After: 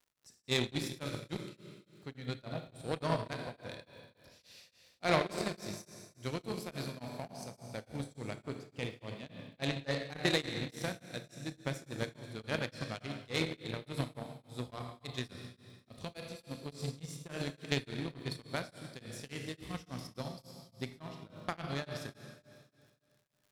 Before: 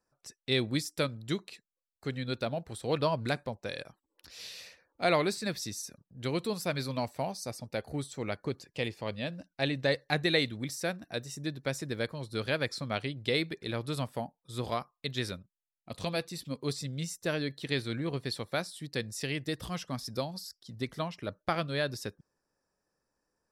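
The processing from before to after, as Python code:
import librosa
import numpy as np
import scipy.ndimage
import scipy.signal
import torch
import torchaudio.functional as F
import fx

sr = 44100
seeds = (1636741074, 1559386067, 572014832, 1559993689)

y = fx.bass_treble(x, sr, bass_db=5, treble_db=1)
y = fx.rev_schroeder(y, sr, rt60_s=2.3, comb_ms=25, drr_db=1.0)
y = fx.cheby_harmonics(y, sr, harmonics=(3, 7), levels_db=(-15, -29), full_scale_db=-11.5)
y = fx.dmg_crackle(y, sr, seeds[0], per_s=170.0, level_db=-58.0)
y = y * np.abs(np.cos(np.pi * 3.5 * np.arange(len(y)) / sr))
y = y * librosa.db_to_amplitude(1.0)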